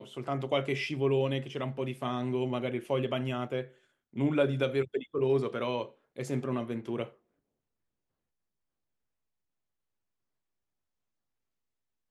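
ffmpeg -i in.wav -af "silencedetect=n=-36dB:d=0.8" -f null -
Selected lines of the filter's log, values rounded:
silence_start: 7.04
silence_end: 12.11 | silence_duration: 5.06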